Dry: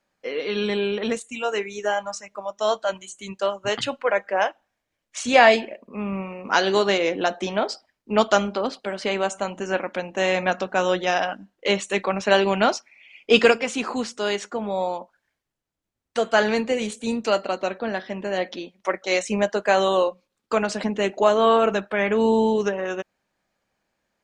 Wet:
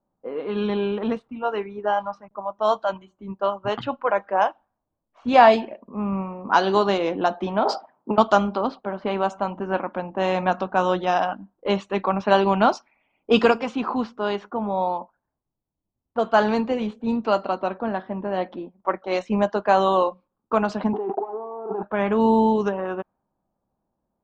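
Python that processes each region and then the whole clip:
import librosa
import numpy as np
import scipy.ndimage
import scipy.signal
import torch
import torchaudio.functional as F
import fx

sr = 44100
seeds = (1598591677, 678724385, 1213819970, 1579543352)

y = fx.chain(x, sr, fx.backlash(play_db=-49.5),
    fx.peak_eq(hz=7000.0, db=-11.5, octaves=0.29), at=(0.7, 2.31))
y = fx.chain(y, sr, fx.highpass(hz=130.0, slope=24),
    fx.peak_eq(hz=770.0, db=12.5, octaves=2.3),
    fx.over_compress(threshold_db=-24.0, ratio=-1.0), at=(7.65, 8.18))
y = fx.chain(y, sr, fx.leveller(passes=3),
    fx.over_compress(threshold_db=-22.0, ratio=-1.0),
    fx.double_bandpass(hz=570.0, octaves=0.92), at=(20.93, 21.83))
y = fx.graphic_eq(y, sr, hz=(500, 1000, 2000, 8000), db=(-6, 6, -11, -8))
y = fx.env_lowpass(y, sr, base_hz=660.0, full_db=-18.5)
y = fx.high_shelf(y, sr, hz=4300.0, db=-10.5)
y = y * librosa.db_to_amplitude(3.5)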